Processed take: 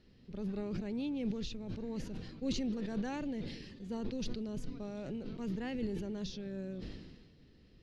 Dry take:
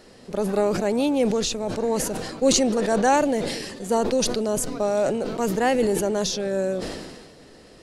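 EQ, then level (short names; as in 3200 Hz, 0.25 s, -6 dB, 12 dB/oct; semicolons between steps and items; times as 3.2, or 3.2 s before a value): air absorption 280 m; passive tone stack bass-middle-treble 6-0-2; bell 1400 Hz -6 dB 1.5 oct; +7.5 dB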